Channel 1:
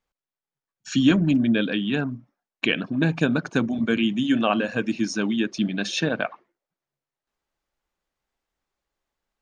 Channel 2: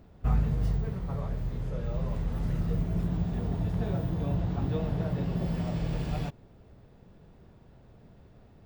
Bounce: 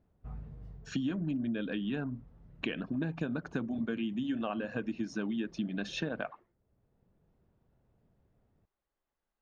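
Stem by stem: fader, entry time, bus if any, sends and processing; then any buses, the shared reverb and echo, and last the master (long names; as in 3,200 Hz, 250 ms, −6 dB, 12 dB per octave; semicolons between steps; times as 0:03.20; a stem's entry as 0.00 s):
−4.5 dB, 0.00 s, no send, notch filter 2,300 Hz, Q 19
−16.5 dB, 0.00 s, no send, automatic ducking −10 dB, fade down 1.75 s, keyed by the first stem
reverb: not used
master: low-pass filter 1,800 Hz 6 dB per octave; downward compressor 6 to 1, threshold −31 dBFS, peak gain reduction 13 dB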